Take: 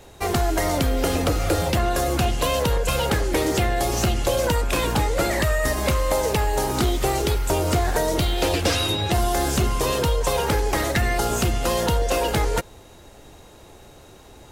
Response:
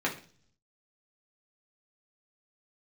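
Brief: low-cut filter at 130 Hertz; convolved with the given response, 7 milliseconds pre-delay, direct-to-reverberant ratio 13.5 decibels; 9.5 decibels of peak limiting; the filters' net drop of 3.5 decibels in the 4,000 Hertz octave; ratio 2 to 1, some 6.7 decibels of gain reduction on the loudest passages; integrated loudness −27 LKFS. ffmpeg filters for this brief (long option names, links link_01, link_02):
-filter_complex "[0:a]highpass=130,equalizer=frequency=4000:width_type=o:gain=-4.5,acompressor=threshold=-31dB:ratio=2,alimiter=level_in=0.5dB:limit=-24dB:level=0:latency=1,volume=-0.5dB,asplit=2[link_01][link_02];[1:a]atrim=start_sample=2205,adelay=7[link_03];[link_02][link_03]afir=irnorm=-1:irlink=0,volume=-22.5dB[link_04];[link_01][link_04]amix=inputs=2:normalize=0,volume=6dB"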